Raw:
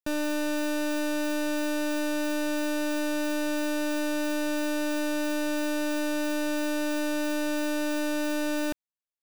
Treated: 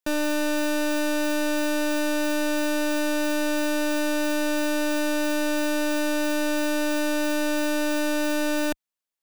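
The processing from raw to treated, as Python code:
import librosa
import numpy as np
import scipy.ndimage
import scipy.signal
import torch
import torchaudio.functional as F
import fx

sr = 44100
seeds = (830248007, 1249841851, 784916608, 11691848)

y = fx.peak_eq(x, sr, hz=78.0, db=-10.0, octaves=2.2)
y = y * 10.0 ** (5.0 / 20.0)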